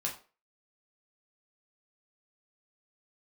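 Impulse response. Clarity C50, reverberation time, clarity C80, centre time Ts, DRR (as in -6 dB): 9.5 dB, 0.35 s, 14.5 dB, 21 ms, -2.0 dB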